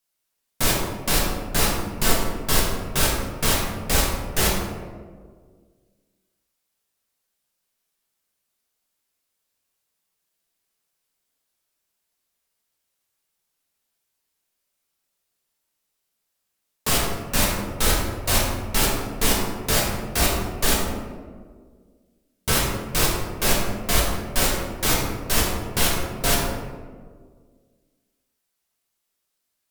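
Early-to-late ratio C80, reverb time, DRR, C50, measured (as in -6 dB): 3.5 dB, 1.8 s, -4.0 dB, 1.0 dB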